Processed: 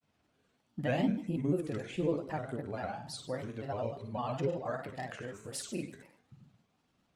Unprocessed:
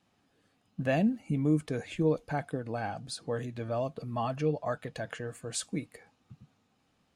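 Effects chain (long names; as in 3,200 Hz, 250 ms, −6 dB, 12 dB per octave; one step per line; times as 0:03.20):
flutter between parallel walls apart 9.3 metres, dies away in 0.57 s
granular cloud, spray 19 ms, pitch spread up and down by 3 semitones
level −3.5 dB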